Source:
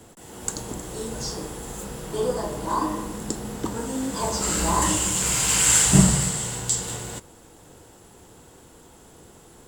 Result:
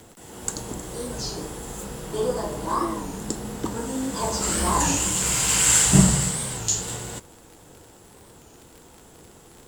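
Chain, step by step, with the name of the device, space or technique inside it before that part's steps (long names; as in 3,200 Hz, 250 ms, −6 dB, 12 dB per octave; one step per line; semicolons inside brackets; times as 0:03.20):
warped LP (wow of a warped record 33 1/3 rpm, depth 160 cents; surface crackle 49 per second −36 dBFS; white noise bed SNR 41 dB)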